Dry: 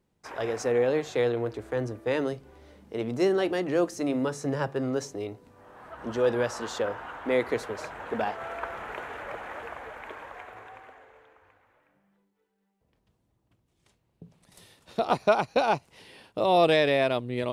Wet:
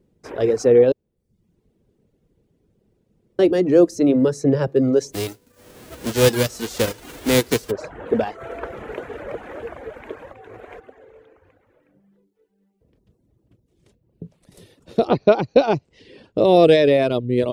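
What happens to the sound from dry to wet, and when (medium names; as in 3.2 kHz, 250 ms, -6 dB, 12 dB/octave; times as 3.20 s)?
0.92–3.39 s: room tone
5.12–7.70 s: formants flattened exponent 0.3
10.33–10.80 s: reverse
15.08–16.43 s: low-pass 4.2 kHz -> 8.1 kHz 24 dB/octave
whole clip: resonant low shelf 630 Hz +9.5 dB, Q 1.5; reverb removal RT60 0.64 s; dynamic bell 5.2 kHz, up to +4 dB, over -44 dBFS, Q 0.83; trim +2 dB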